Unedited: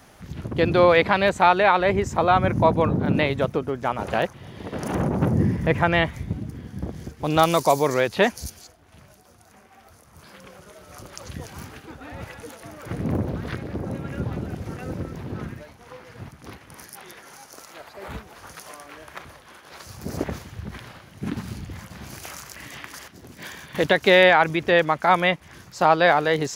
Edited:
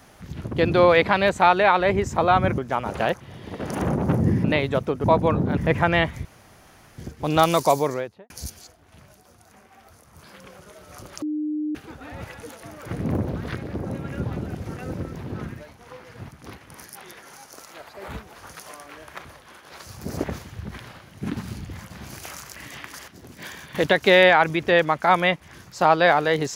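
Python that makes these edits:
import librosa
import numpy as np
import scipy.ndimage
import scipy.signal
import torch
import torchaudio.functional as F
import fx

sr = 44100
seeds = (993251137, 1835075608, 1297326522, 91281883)

y = fx.studio_fade_out(x, sr, start_s=7.67, length_s=0.63)
y = fx.edit(y, sr, fx.swap(start_s=2.58, length_s=0.53, other_s=3.71, other_length_s=1.86),
    fx.room_tone_fill(start_s=6.25, length_s=0.73),
    fx.bleep(start_s=11.22, length_s=0.53, hz=303.0, db=-23.5), tone=tone)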